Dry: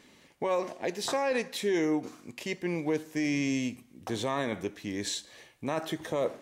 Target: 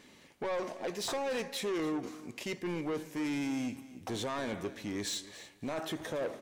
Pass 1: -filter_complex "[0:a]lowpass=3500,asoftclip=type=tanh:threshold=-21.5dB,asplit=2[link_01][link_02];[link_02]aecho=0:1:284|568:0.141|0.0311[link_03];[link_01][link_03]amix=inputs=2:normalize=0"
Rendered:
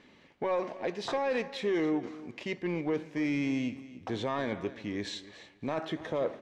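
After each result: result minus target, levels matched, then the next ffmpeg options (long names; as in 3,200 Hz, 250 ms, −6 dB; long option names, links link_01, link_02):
soft clipping: distortion −10 dB; 4,000 Hz band −5.0 dB
-filter_complex "[0:a]lowpass=3500,asoftclip=type=tanh:threshold=-30.5dB,asplit=2[link_01][link_02];[link_02]aecho=0:1:284|568:0.141|0.0311[link_03];[link_01][link_03]amix=inputs=2:normalize=0"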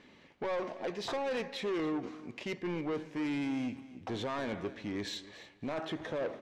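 4,000 Hz band −2.0 dB
-filter_complex "[0:a]asoftclip=type=tanh:threshold=-30.5dB,asplit=2[link_01][link_02];[link_02]aecho=0:1:284|568:0.141|0.0311[link_03];[link_01][link_03]amix=inputs=2:normalize=0"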